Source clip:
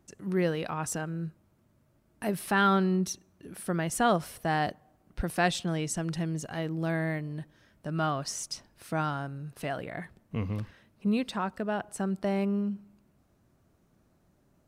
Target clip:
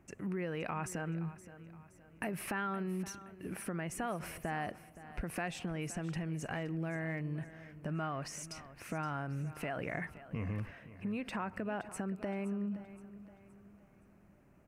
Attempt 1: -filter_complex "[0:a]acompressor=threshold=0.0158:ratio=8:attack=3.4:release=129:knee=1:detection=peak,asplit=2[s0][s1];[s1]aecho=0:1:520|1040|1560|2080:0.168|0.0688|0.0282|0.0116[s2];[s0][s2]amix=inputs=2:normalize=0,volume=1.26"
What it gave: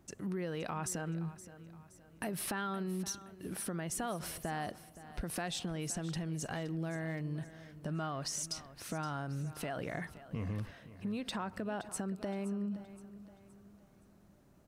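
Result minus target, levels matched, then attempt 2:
8 kHz band +6.5 dB
-filter_complex "[0:a]acompressor=threshold=0.0158:ratio=8:attack=3.4:release=129:knee=1:detection=peak,highshelf=f=3000:t=q:w=3:g=-6,asplit=2[s0][s1];[s1]aecho=0:1:520|1040|1560|2080:0.168|0.0688|0.0282|0.0116[s2];[s0][s2]amix=inputs=2:normalize=0,volume=1.26"

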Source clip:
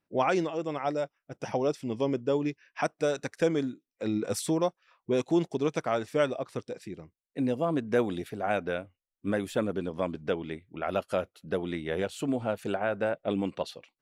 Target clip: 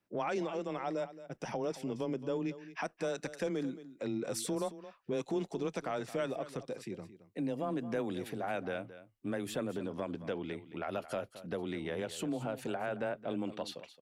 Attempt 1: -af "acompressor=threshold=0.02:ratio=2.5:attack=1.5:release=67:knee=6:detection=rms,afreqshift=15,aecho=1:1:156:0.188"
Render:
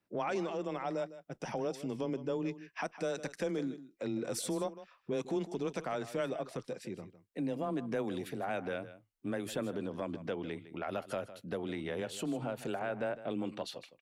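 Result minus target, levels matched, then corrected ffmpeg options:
echo 65 ms early
-af "acompressor=threshold=0.02:ratio=2.5:attack=1.5:release=67:knee=6:detection=rms,afreqshift=15,aecho=1:1:221:0.188"

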